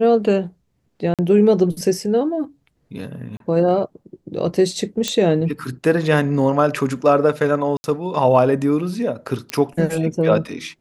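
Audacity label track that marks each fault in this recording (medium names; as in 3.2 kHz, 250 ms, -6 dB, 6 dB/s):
1.140000	1.190000	dropout 47 ms
3.370000	3.400000	dropout 32 ms
5.080000	5.080000	pop -6 dBFS
7.770000	7.840000	dropout 70 ms
9.500000	9.500000	pop -9 dBFS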